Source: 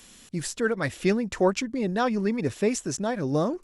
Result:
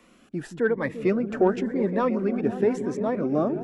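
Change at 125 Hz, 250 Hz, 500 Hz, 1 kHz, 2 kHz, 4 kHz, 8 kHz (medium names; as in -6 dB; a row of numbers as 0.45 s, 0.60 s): -2.0 dB, +1.5 dB, +2.5 dB, -0.5 dB, -2.0 dB, under -10 dB, under -15 dB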